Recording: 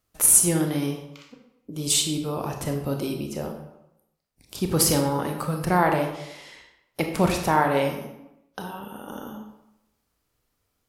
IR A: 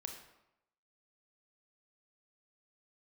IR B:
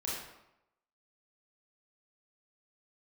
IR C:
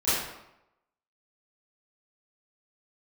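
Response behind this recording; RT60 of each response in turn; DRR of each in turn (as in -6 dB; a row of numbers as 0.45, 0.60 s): A; 0.85, 0.85, 0.85 s; 3.0, -6.5, -16.5 dB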